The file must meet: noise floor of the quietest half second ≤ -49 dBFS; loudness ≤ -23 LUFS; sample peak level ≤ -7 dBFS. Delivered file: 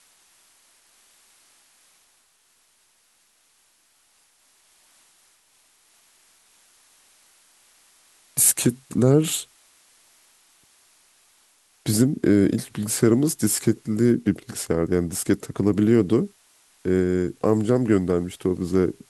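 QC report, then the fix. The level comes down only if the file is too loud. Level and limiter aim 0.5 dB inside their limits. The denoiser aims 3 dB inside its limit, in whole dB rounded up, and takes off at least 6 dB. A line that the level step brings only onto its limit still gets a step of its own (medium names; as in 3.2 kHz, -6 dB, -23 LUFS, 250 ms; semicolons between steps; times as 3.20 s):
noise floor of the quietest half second -63 dBFS: pass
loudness -21.5 LUFS: fail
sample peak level -4.5 dBFS: fail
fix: trim -2 dB; peak limiter -7.5 dBFS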